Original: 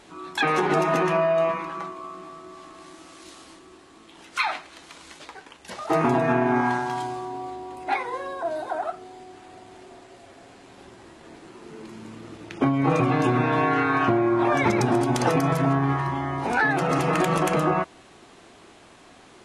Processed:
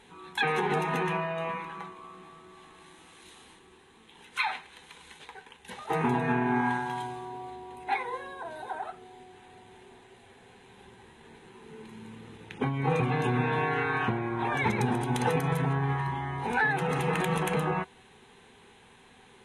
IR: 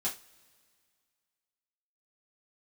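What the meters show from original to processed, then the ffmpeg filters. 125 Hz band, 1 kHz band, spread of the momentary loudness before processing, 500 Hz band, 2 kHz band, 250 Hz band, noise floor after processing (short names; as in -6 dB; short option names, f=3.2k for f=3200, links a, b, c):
-3.5 dB, -6.0 dB, 20 LU, -8.0 dB, -3.5 dB, -8.0 dB, -56 dBFS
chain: -af "superequalizer=6b=0.316:8b=0.282:10b=0.501:14b=0.282:15b=0.501,volume=-3.5dB"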